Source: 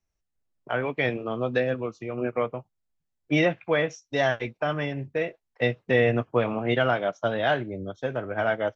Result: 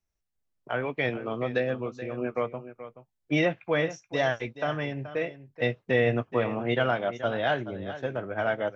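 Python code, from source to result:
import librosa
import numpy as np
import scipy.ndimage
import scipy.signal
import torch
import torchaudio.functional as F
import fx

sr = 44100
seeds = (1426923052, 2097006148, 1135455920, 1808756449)

y = x + 10.0 ** (-13.5 / 20.0) * np.pad(x, (int(428 * sr / 1000.0), 0))[:len(x)]
y = F.gain(torch.from_numpy(y), -2.5).numpy()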